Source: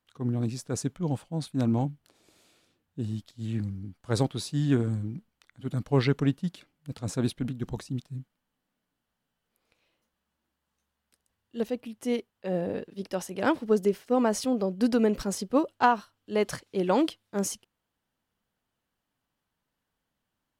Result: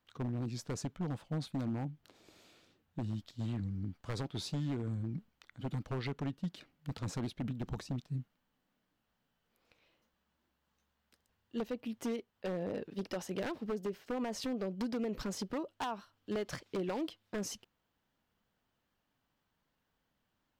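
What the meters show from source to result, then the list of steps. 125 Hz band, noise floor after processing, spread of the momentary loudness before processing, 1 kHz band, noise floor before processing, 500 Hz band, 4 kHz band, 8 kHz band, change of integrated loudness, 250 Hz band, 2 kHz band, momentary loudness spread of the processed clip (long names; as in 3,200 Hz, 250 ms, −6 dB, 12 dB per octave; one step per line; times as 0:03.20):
−8.5 dB, −82 dBFS, 11 LU, −14.0 dB, −83 dBFS, −11.5 dB, −7.0 dB, −10.0 dB, −10.5 dB, −10.0 dB, −11.0 dB, 6 LU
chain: parametric band 10,000 Hz −10.5 dB 0.77 octaves
in parallel at −2 dB: brickwall limiter −20.5 dBFS, peak gain reduction 11 dB
on the sum: downward compressor 8 to 1, threshold −29 dBFS, peak gain reduction 15 dB
wave folding −26 dBFS
wow of a warped record 78 rpm, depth 100 cents
level −3.5 dB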